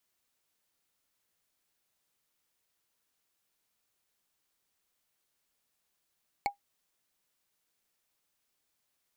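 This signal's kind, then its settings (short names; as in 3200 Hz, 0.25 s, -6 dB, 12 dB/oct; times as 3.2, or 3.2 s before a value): wood hit, lowest mode 808 Hz, decay 0.12 s, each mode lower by 4 dB, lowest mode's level -22 dB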